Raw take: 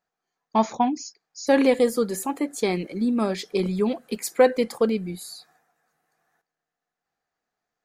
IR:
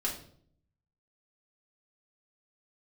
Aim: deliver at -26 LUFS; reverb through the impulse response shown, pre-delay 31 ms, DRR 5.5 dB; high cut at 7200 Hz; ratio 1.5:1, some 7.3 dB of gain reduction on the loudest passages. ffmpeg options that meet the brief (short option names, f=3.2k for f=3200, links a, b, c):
-filter_complex "[0:a]lowpass=7.2k,acompressor=threshold=-32dB:ratio=1.5,asplit=2[a][b];[1:a]atrim=start_sample=2205,adelay=31[c];[b][c]afir=irnorm=-1:irlink=0,volume=-10dB[d];[a][d]amix=inputs=2:normalize=0,volume=2.5dB"